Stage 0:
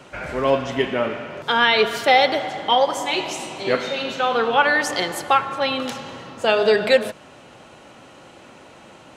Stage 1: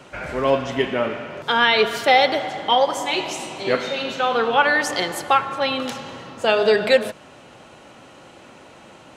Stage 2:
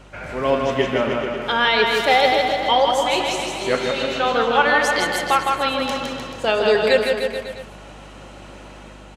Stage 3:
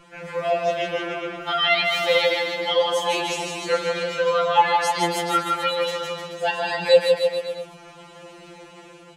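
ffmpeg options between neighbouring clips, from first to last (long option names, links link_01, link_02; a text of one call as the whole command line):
ffmpeg -i in.wav -af anull out.wav
ffmpeg -i in.wav -filter_complex "[0:a]dynaudnorm=framelen=170:gausssize=5:maxgain=4.5dB,aeval=exprs='val(0)+0.00708*(sin(2*PI*50*n/s)+sin(2*PI*2*50*n/s)/2+sin(2*PI*3*50*n/s)/3+sin(2*PI*4*50*n/s)/4+sin(2*PI*5*50*n/s)/5)':channel_layout=same,asplit=2[link_01][link_02];[link_02]aecho=0:1:160|304|433.6|550.2|655.2:0.631|0.398|0.251|0.158|0.1[link_03];[link_01][link_03]amix=inputs=2:normalize=0,volume=-3dB" out.wav
ffmpeg -i in.wav -af "afftfilt=real='re*2.83*eq(mod(b,8),0)':imag='im*2.83*eq(mod(b,8),0)':win_size=2048:overlap=0.75" out.wav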